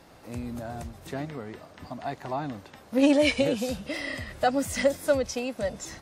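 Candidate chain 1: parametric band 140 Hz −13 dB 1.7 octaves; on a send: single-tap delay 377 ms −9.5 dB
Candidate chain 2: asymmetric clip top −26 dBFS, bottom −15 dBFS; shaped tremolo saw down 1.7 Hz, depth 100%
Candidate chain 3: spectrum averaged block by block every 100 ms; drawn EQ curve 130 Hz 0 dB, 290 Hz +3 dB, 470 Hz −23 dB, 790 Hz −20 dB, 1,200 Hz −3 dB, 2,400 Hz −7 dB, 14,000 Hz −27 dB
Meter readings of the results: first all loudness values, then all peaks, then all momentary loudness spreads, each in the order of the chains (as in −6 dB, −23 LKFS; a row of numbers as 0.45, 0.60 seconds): −29.0, −34.5, −31.0 LKFS; −11.5, −16.5, −14.0 dBFS; 18, 16, 19 LU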